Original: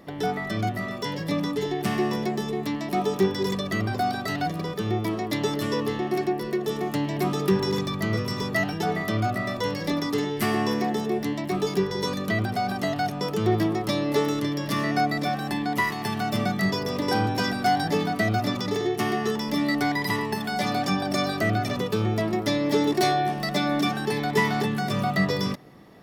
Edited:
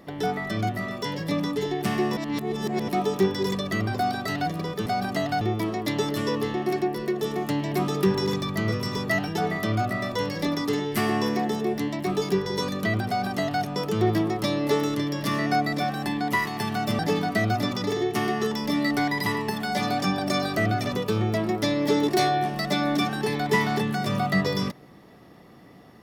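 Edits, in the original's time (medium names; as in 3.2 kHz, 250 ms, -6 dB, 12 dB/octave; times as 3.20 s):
2.17–2.88 s: reverse
12.53–13.08 s: copy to 4.86 s
16.44–17.83 s: delete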